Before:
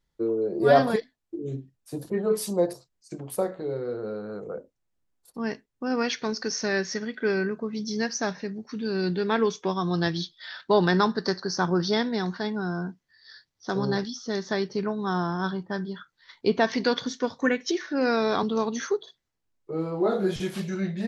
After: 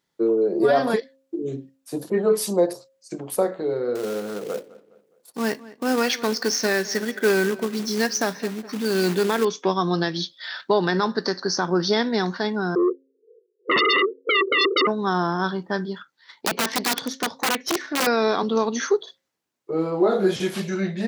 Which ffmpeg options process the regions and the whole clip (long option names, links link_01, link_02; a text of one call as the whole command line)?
ffmpeg -i in.wav -filter_complex "[0:a]asettb=1/sr,asplit=3[link_01][link_02][link_03];[link_01]atrim=end=3.954[link_04];[link_02]atrim=start=3.95:end=9.45,asetpts=PTS-STARTPTS,afade=type=in:duration=0.004:curve=qsin,afade=type=out:start_time=5.496:duration=0.004:curve=qsin,acrusher=bits=3:mode=log:mix=0:aa=0.000001,asplit=2[link_05][link_06];[link_06]adelay=207,lowpass=frequency=3200:poles=1,volume=-18.5dB,asplit=2[link_07][link_08];[link_08]adelay=207,lowpass=frequency=3200:poles=1,volume=0.43,asplit=2[link_09][link_10];[link_10]adelay=207,lowpass=frequency=3200:poles=1,volume=0.43[link_11];[link_05][link_07][link_09][link_11]amix=inputs=4:normalize=0,atrim=end_sample=242550[link_12];[link_03]atrim=start=9.446[link_13];[link_04][link_12]acrossfade=duration=0.004:curve1=hsin:curve2=qsin[link_14];[link_14][link_13]acrossfade=duration=0.004:curve1=qsin:curve2=hsin,asettb=1/sr,asplit=3[link_15][link_16][link_17];[link_15]atrim=end=12.754[link_18];[link_16]atrim=start=12.75:end=14.87,asetpts=PTS-STARTPTS,afade=type=in:duration=0.004:curve=qsin,afade=type=out:start_time=2.116:duration=0.004:curve=qsin,asuperpass=centerf=420:order=12:qfactor=3,aeval=exprs='0.0794*sin(PI/2*7.94*val(0)/0.0794)':channel_layout=same[link_19];[link_17]atrim=start=14.866[link_20];[link_18][link_19]acrossfade=duration=0.004:curve1=hsin:curve2=qsin[link_21];[link_21][link_20]acrossfade=duration=0.004:curve1=qsin:curve2=hsin,asettb=1/sr,asplit=3[link_22][link_23][link_24];[link_22]atrim=end=15.954[link_25];[link_23]atrim=start=15.95:end=18.07,asetpts=PTS-STARTPTS,afade=type=in:duration=0.004:curve=qsin,afade=type=out:start_time=2.116:duration=0.004:curve=qsin,equalizer=frequency=860:width_type=o:width=0.21:gain=4.5,aeval=exprs='(tanh(14.1*val(0)+0.65)-tanh(0.65))/14.1':channel_layout=same,aeval=exprs='(mod(11.2*val(0)+1,2)-1)/11.2':channel_layout=same[link_26];[link_24]atrim=start=18.066[link_27];[link_25][link_26]acrossfade=duration=0.004:curve1=hsin:curve2=qsin[link_28];[link_28][link_27]acrossfade=duration=0.004:curve1=qsin:curve2=hsin,highpass=210,bandreject=frequency=268.5:width_type=h:width=4,bandreject=frequency=537:width_type=h:width=4,alimiter=limit=-16dB:level=0:latency=1:release=204,volume=6.5dB" out.wav